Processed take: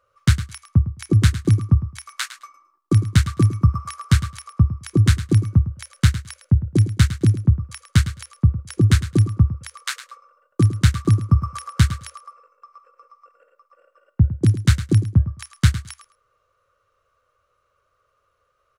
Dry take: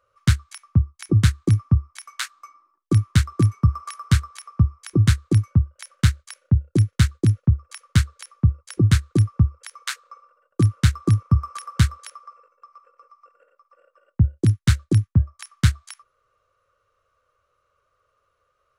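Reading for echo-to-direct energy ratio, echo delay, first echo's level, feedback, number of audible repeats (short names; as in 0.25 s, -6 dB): -13.0 dB, 0.107 s, -13.0 dB, 16%, 2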